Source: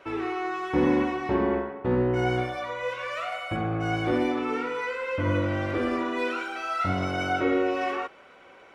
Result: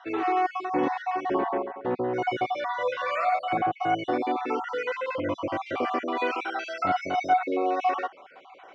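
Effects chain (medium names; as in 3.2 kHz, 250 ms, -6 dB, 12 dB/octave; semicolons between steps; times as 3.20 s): random holes in the spectrogram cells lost 38%; gain riding within 3 dB 0.5 s; cabinet simulation 210–6300 Hz, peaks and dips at 210 Hz -5 dB, 740 Hz +9 dB, 1.1 kHz +3 dB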